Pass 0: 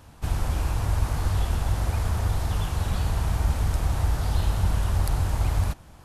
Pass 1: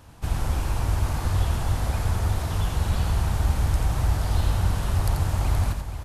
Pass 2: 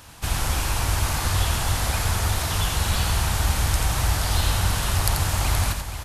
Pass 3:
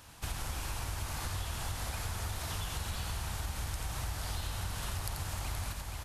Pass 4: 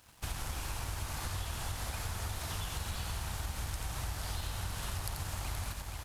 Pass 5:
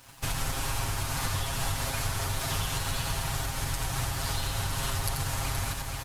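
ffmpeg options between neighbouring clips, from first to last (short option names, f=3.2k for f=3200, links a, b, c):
-af "aecho=1:1:86|474:0.501|0.355"
-af "tiltshelf=f=1.1k:g=-6.5,volume=6dB"
-af "acompressor=threshold=-25dB:ratio=6,volume=-8.5dB"
-af "aeval=exprs='sgn(val(0))*max(abs(val(0))-0.00158,0)':c=same"
-af "aecho=1:1:7.4:0.85,volume=6.5dB"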